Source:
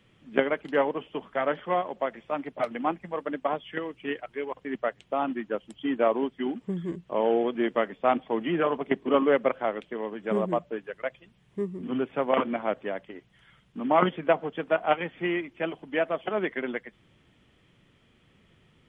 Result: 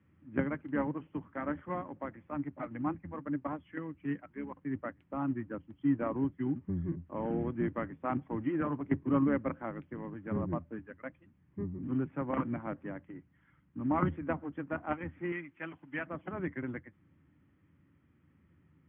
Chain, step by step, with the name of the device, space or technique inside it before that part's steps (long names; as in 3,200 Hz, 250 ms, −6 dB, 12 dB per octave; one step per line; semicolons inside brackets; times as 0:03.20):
sub-octave bass pedal (sub-octave generator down 1 octave, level −3 dB; loudspeaker in its box 75–2,000 Hz, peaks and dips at 83 Hz +9 dB, 160 Hz +7 dB, 290 Hz +10 dB, 440 Hz −8 dB, 680 Hz −8 dB)
0:15.32–0:16.07: tilt shelving filter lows −8.5 dB
level −8.5 dB